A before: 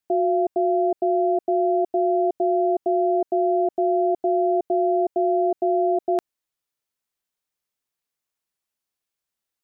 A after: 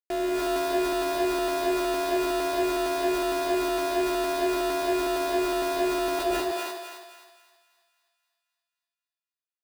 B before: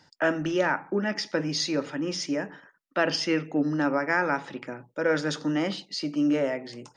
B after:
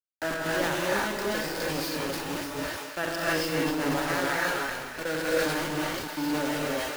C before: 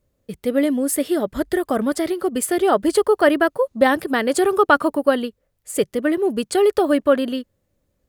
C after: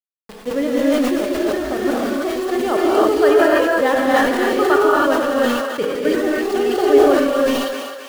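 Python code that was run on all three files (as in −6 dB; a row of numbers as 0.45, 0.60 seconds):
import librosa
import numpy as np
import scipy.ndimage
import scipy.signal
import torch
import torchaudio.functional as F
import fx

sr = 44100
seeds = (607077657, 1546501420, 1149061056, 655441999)

p1 = scipy.signal.sosfilt(scipy.signal.butter(2, 4800.0, 'lowpass', fs=sr, output='sos'), x)
p2 = fx.level_steps(p1, sr, step_db=18)
p3 = p1 + (p2 * librosa.db_to_amplitude(0.0))
p4 = np.where(np.abs(p3) >= 10.0 ** (-22.0 / 20.0), p3, 0.0)
p5 = p4 + fx.echo_thinned(p4, sr, ms=263, feedback_pct=57, hz=600.0, wet_db=-10.5, dry=0)
p6 = fx.rev_gated(p5, sr, seeds[0], gate_ms=340, shape='rising', drr_db=-5.0)
p7 = fx.sustainer(p6, sr, db_per_s=34.0)
y = p7 * librosa.db_to_amplitude(-9.0)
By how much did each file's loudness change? −4.5, −1.5, +2.5 LU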